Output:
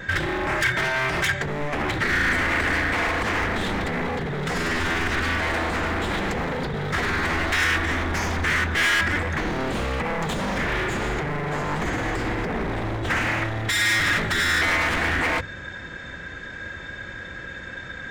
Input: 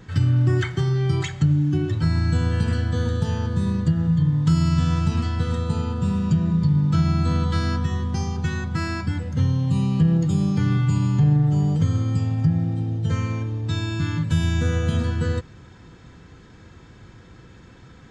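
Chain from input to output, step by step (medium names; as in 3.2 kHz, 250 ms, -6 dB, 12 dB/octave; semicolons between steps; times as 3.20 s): small resonant body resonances 570/1600/3600 Hz, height 16 dB, ringing for 40 ms; peak limiter -16 dBFS, peak gain reduction 8 dB; hum notches 50/100/150/200/250/300 Hz; wavefolder -26 dBFS; ten-band graphic EQ 125 Hz -6 dB, 500 Hz -5 dB, 2 kHz +10 dB, 4 kHz -4 dB; trim +7 dB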